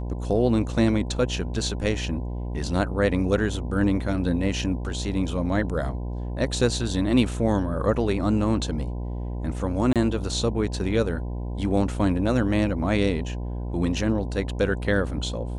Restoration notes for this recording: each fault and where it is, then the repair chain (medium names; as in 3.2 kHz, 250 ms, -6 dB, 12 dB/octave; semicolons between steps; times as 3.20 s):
buzz 60 Hz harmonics 17 -30 dBFS
9.93–9.96 s: dropout 27 ms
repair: de-hum 60 Hz, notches 17; interpolate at 9.93 s, 27 ms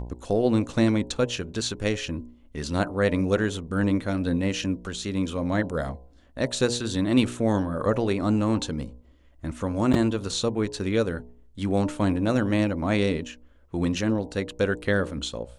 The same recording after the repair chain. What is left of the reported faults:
nothing left